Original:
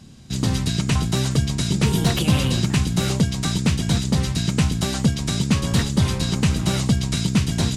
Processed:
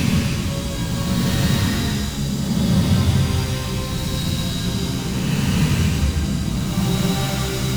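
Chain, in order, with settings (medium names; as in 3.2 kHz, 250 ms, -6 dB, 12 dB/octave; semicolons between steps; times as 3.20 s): tracing distortion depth 0.071 ms; Paulstretch 6.1×, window 0.25 s, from 5.53 s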